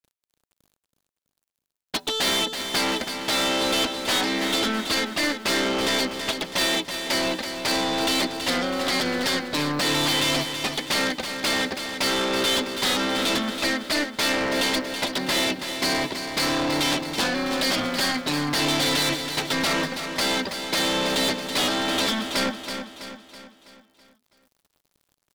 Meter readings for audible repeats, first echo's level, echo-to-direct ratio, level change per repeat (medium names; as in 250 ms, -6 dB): 5, -8.0 dB, -7.0 dB, -6.0 dB